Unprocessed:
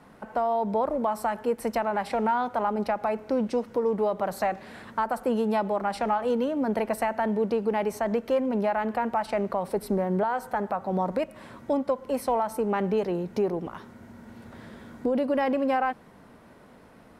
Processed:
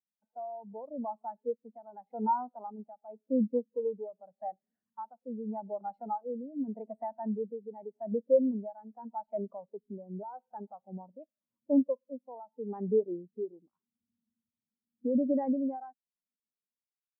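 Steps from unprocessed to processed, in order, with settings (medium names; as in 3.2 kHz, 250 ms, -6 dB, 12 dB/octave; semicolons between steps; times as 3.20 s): dynamic bell 270 Hz, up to +4 dB, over -38 dBFS, Q 2.2; tremolo 0.85 Hz, depth 44%; spectral contrast expander 2.5:1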